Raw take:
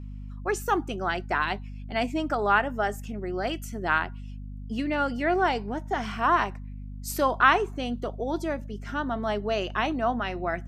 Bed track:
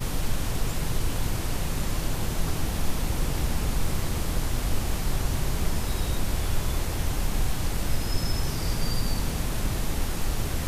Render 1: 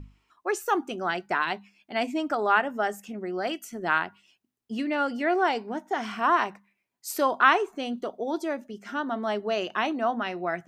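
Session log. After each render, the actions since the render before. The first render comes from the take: hum notches 50/100/150/200/250 Hz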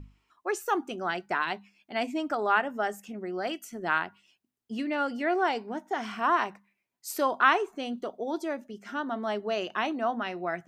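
trim -2.5 dB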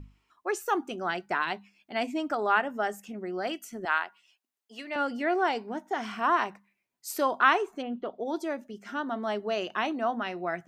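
3.85–4.96 s: high-pass 600 Hz; 7.81–8.24 s: low-pass 2 kHz -> 5.4 kHz 24 dB/octave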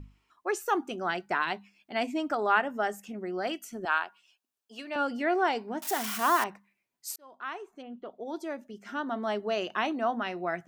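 3.71–5.09 s: band-stop 2 kHz, Q 5.8; 5.82–6.44 s: zero-crossing glitches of -24.5 dBFS; 7.16–9.20 s: fade in linear

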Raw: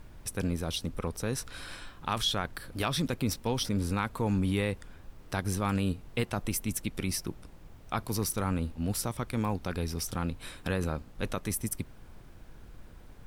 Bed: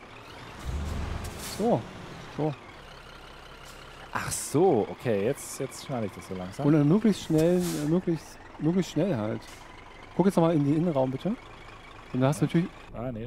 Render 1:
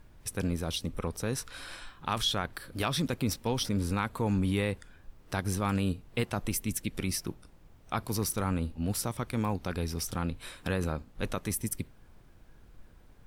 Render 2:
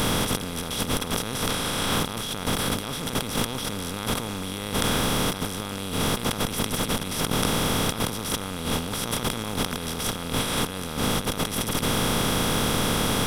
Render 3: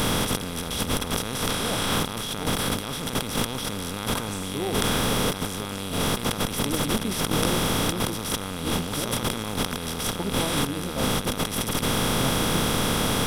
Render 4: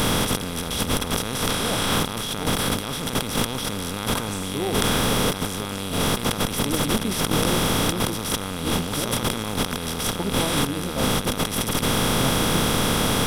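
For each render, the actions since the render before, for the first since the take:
noise print and reduce 6 dB
spectral levelling over time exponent 0.2; compressor with a negative ratio -26 dBFS, ratio -0.5
add bed -8.5 dB
trim +2.5 dB; peak limiter -3 dBFS, peak gain reduction 3 dB

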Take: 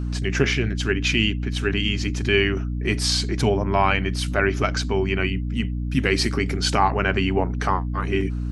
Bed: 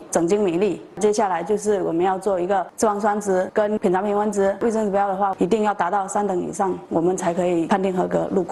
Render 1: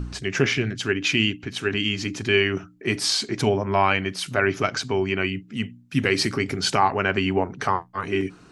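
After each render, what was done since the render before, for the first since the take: de-hum 60 Hz, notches 5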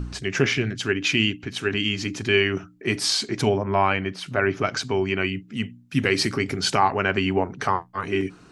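3.58–4.67 s: low-pass 2.4 kHz 6 dB/octave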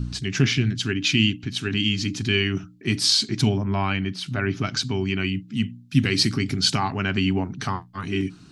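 graphic EQ 125/250/500/1000/2000/4000 Hz +6/+5/-12/-4/-4/+6 dB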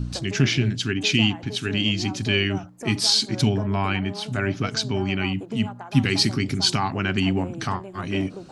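add bed -18 dB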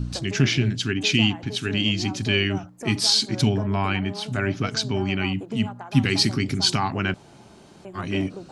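7.14–7.85 s: room tone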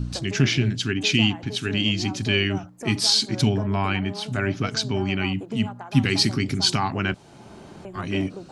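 7.12–7.97 s: three bands compressed up and down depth 70%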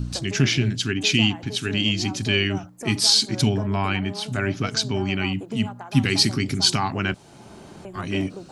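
treble shelf 6.8 kHz +7 dB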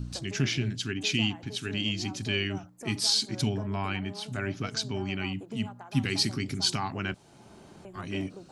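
trim -8 dB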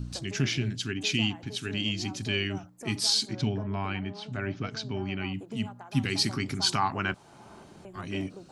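3.33–5.34 s: distance through air 140 m; 6.26–7.64 s: peaking EQ 1.1 kHz +8 dB 1.4 oct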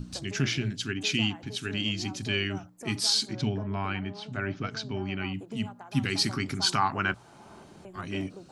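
hum notches 60/120 Hz; dynamic bell 1.4 kHz, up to +4 dB, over -46 dBFS, Q 2.3

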